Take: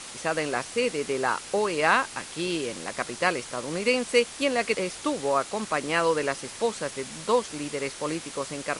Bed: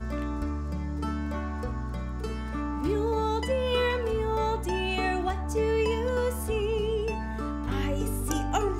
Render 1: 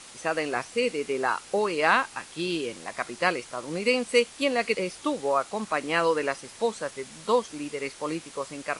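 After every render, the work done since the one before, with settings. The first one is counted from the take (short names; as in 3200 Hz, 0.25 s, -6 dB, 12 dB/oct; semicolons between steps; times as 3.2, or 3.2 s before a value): noise print and reduce 6 dB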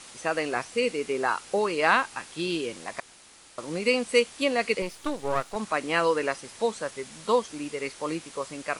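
3–3.58 room tone; 4.82–5.56 half-wave gain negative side -12 dB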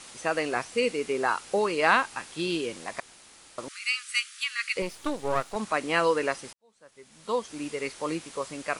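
3.68–4.76 steep high-pass 1200 Hz 96 dB/oct; 6.53–7.63 fade in quadratic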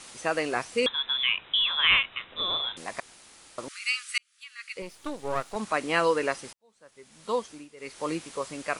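0.86–2.77 inverted band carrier 3800 Hz; 4.18–5.75 fade in; 7.39–8.04 dip -16 dB, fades 0.28 s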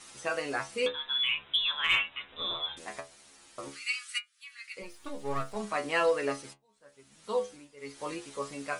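metallic resonator 68 Hz, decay 0.29 s, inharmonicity 0.002; in parallel at -6 dB: hard clip -24 dBFS, distortion -19 dB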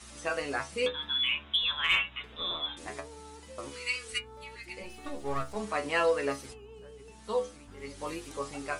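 add bed -21.5 dB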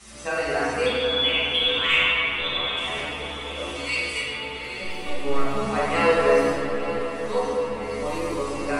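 diffused feedback echo 0.907 s, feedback 59%, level -12 dB; shoebox room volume 160 m³, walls hard, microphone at 1.2 m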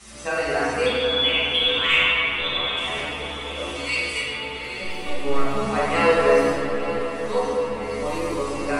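gain +1.5 dB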